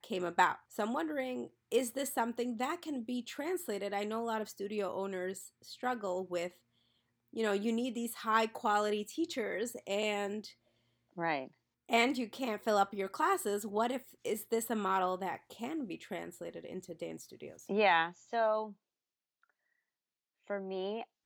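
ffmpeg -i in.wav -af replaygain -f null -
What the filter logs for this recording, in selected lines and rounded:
track_gain = +15.0 dB
track_peak = 0.147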